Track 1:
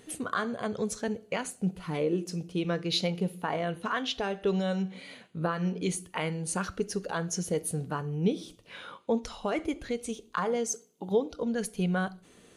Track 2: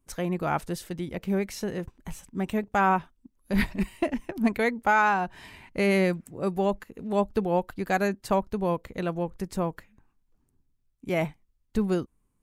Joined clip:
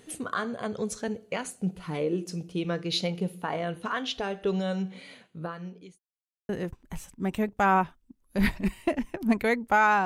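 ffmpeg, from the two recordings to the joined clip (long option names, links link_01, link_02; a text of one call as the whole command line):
ffmpeg -i cue0.wav -i cue1.wav -filter_complex "[0:a]apad=whole_dur=10.05,atrim=end=10.05,asplit=2[link_01][link_02];[link_01]atrim=end=5.99,asetpts=PTS-STARTPTS,afade=type=out:start_time=4.96:duration=1.03[link_03];[link_02]atrim=start=5.99:end=6.49,asetpts=PTS-STARTPTS,volume=0[link_04];[1:a]atrim=start=1.64:end=5.2,asetpts=PTS-STARTPTS,afade=type=in:duration=0.004:curve=hsin[link_05];[link_03][link_04][link_05]concat=n=3:v=0:a=1" out.wav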